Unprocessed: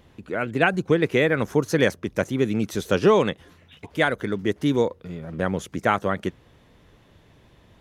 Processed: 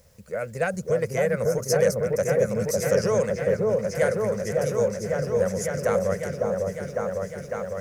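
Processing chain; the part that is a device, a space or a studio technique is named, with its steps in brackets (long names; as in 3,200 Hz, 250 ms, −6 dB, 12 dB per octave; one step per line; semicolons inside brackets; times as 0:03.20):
drawn EQ curve 210 Hz 0 dB, 290 Hz −23 dB, 530 Hz +10 dB, 830 Hz −6 dB, 2,100 Hz −1 dB, 3,500 Hz −18 dB, 5,000 Hz +13 dB
open-reel tape (soft clipping −8.5 dBFS, distortion −20 dB; parametric band 72 Hz +3.5 dB 0.8 octaves; white noise bed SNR 38 dB)
echo whose low-pass opens from repeat to repeat 553 ms, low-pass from 750 Hz, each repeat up 1 octave, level 0 dB
level −5 dB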